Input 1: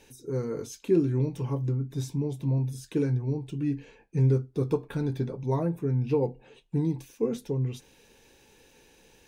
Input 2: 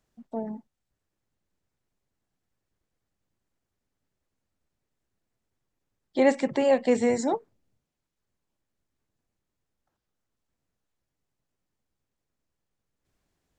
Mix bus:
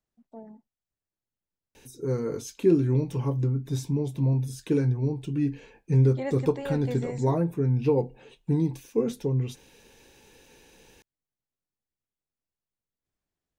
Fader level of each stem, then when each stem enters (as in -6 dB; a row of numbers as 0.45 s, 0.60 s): +2.5 dB, -12.0 dB; 1.75 s, 0.00 s